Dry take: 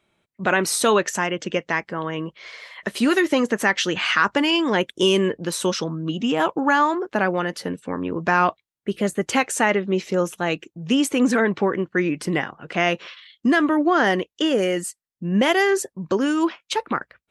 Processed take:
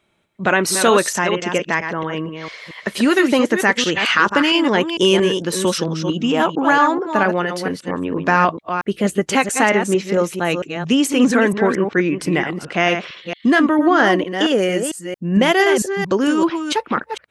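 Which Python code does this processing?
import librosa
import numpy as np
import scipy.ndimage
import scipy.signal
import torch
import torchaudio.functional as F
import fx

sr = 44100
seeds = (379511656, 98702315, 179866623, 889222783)

y = fx.reverse_delay(x, sr, ms=226, wet_db=-7)
y = y * librosa.db_to_amplitude(3.5)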